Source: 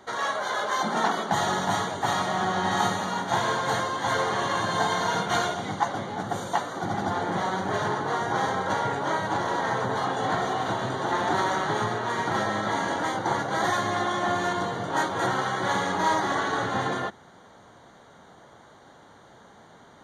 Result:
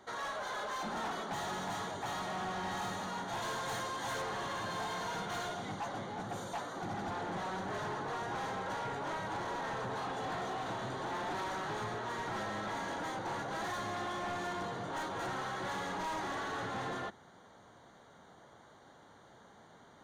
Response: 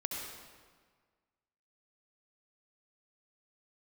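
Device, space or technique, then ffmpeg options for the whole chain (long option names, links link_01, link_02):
saturation between pre-emphasis and de-emphasis: -filter_complex "[0:a]highshelf=frequency=3600:gain=11,asoftclip=type=tanh:threshold=-26.5dB,highshelf=frequency=3600:gain=-11,asettb=1/sr,asplit=3[link_01][link_02][link_03];[link_01]atrim=end=3.424[link_04];[link_02]atrim=start=3.42:end=4.22,asetpts=PTS-STARTPTS,afade=type=in:duration=0.004:curve=qsin,afade=type=out:start_time=0.796:duration=0.004:curve=qsin,highshelf=frequency=5000:gain=7[link_05];[link_03]atrim=start=4.216[link_06];[link_04][link_05]acrossfade=duration=0.004:curve1=hsin:curve2=qsin[link_07];[link_07][link_06]acrossfade=duration=0.004:curve1=qsin:curve2=hsin,volume=-7dB"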